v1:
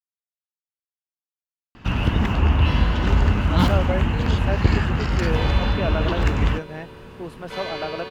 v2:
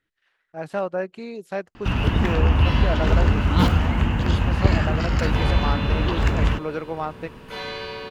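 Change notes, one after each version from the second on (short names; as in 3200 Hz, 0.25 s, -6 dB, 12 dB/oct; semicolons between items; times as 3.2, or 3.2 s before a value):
speech: entry -2.95 s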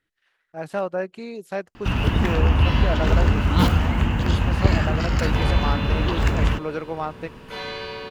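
second sound: add high shelf 9700 Hz -10 dB; master: add high shelf 8300 Hz +7 dB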